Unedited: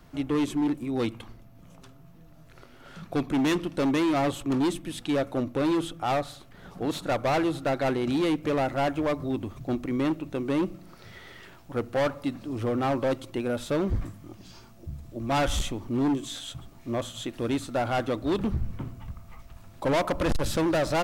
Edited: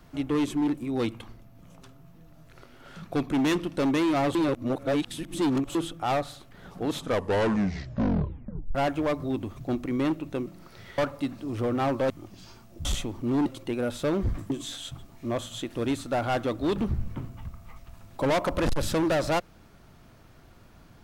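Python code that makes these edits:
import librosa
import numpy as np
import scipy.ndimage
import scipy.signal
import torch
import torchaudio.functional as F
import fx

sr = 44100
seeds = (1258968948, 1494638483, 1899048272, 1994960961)

y = fx.edit(x, sr, fx.reverse_span(start_s=4.35, length_s=1.4),
    fx.tape_stop(start_s=6.88, length_s=1.87),
    fx.cut(start_s=10.46, length_s=0.27),
    fx.cut(start_s=11.25, length_s=0.76),
    fx.move(start_s=13.13, length_s=1.04, to_s=16.13),
    fx.cut(start_s=14.92, length_s=0.6), tone=tone)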